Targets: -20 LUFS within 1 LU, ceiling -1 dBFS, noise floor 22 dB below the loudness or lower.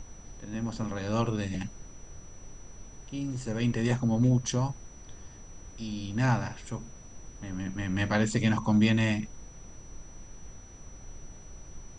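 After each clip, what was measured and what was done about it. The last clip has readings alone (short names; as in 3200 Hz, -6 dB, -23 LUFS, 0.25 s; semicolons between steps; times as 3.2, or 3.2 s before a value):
steady tone 5900 Hz; tone level -53 dBFS; noise floor -49 dBFS; noise floor target -52 dBFS; loudness -29.5 LUFS; peak -12.5 dBFS; loudness target -20.0 LUFS
-> notch 5900 Hz, Q 30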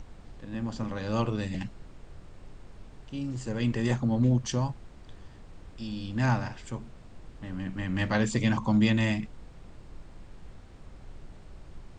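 steady tone none; noise floor -50 dBFS; noise floor target -52 dBFS
-> noise print and reduce 6 dB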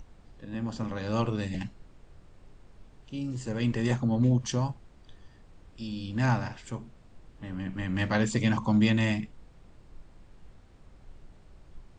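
noise floor -56 dBFS; loudness -29.5 LUFS; peak -12.5 dBFS; loudness target -20.0 LUFS
-> gain +9.5 dB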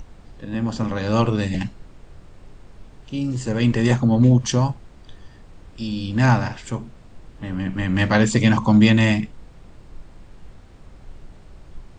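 loudness -20.0 LUFS; peak -3.0 dBFS; noise floor -46 dBFS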